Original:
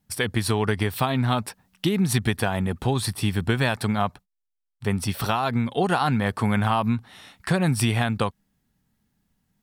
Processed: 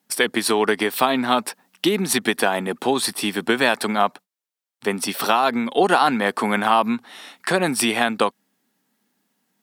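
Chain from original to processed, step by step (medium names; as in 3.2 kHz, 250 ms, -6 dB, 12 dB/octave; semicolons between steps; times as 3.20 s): high-pass 250 Hz 24 dB/octave; trim +6.5 dB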